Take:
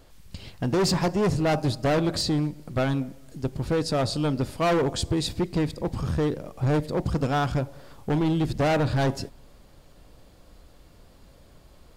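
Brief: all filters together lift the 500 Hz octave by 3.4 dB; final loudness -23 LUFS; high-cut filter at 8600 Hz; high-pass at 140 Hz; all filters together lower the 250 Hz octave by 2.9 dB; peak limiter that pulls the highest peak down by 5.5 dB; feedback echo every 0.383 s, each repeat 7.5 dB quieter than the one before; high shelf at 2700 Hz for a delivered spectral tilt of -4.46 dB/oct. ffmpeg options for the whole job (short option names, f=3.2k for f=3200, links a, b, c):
-af "highpass=140,lowpass=8.6k,equalizer=f=250:t=o:g=-6,equalizer=f=500:t=o:g=5.5,highshelf=f=2.7k:g=8.5,alimiter=limit=-15dB:level=0:latency=1,aecho=1:1:383|766|1149|1532|1915:0.422|0.177|0.0744|0.0312|0.0131,volume=3dB"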